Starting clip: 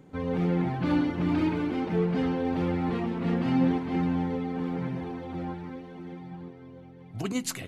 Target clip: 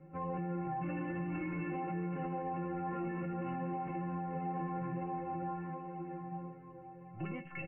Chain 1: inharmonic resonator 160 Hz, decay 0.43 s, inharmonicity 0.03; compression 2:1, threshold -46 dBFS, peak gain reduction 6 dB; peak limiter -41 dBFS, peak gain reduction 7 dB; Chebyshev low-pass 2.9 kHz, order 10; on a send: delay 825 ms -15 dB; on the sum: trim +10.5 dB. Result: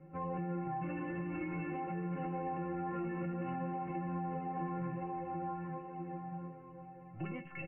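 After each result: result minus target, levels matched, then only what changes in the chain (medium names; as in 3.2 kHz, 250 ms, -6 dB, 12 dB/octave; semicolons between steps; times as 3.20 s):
echo 319 ms late; compression: peak gain reduction +6 dB
change: delay 506 ms -15 dB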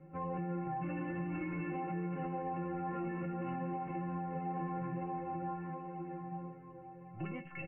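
compression: peak gain reduction +6 dB
remove: compression 2:1, threshold -46 dBFS, peak gain reduction 6 dB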